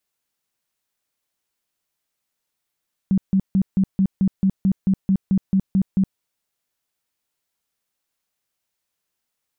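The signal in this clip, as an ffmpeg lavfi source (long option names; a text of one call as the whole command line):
ffmpeg -f lavfi -i "aevalsrc='0.211*sin(2*PI*192*mod(t,0.22))*lt(mod(t,0.22),13/192)':duration=3.08:sample_rate=44100" out.wav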